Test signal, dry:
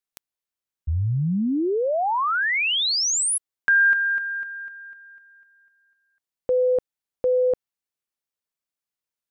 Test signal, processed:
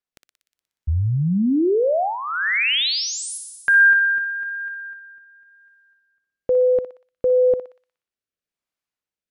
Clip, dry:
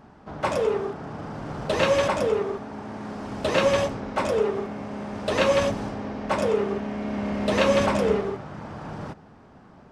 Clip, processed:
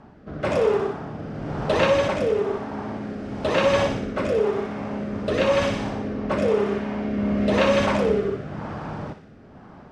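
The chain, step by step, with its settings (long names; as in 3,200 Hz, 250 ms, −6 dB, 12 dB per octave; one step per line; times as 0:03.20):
feedback echo with a high-pass in the loop 60 ms, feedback 66%, high-pass 1,000 Hz, level −6 dB
rotating-speaker cabinet horn 1 Hz
high-shelf EQ 5,700 Hz −12 dB
in parallel at −1 dB: brickwall limiter −20 dBFS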